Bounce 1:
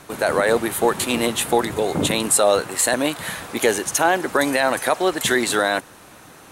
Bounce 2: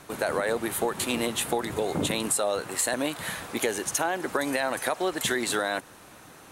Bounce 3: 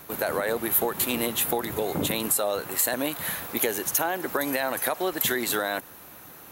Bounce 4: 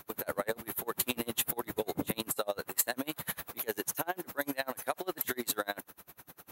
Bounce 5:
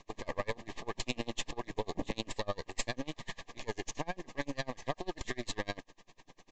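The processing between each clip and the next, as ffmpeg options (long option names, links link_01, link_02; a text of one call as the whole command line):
ffmpeg -i in.wav -af "acompressor=threshold=-18dB:ratio=6,volume=-4.5dB" out.wav
ffmpeg -i in.wav -af "aexciter=amount=9:drive=5.6:freq=12000" out.wav
ffmpeg -i in.wav -af "aeval=exprs='val(0)*pow(10,-32*(0.5-0.5*cos(2*PI*10*n/s))/20)':channel_layout=same,volume=-1.5dB" out.wav
ffmpeg -i in.wav -af "aeval=exprs='max(val(0),0)':channel_layout=same,aresample=16000,aresample=44100,asuperstop=centerf=1400:order=12:qfactor=3.8,volume=1.5dB" out.wav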